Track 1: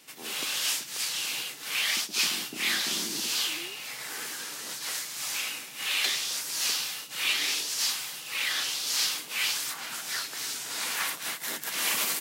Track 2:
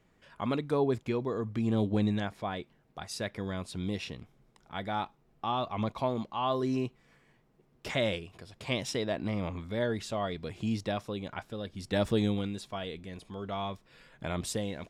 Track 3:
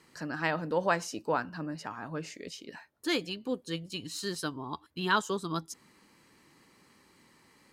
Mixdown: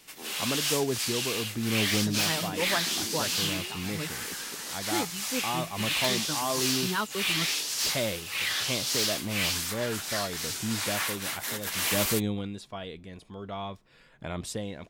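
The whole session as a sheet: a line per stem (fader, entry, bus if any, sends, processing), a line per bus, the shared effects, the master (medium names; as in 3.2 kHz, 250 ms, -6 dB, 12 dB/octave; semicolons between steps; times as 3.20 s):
0.0 dB, 0.00 s, no send, wavefolder -21 dBFS
-1.0 dB, 0.00 s, no send, none
-4.0 dB, 1.85 s, no send, reverb removal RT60 1.6 s; peaking EQ 100 Hz +13.5 dB 1.9 oct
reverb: none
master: none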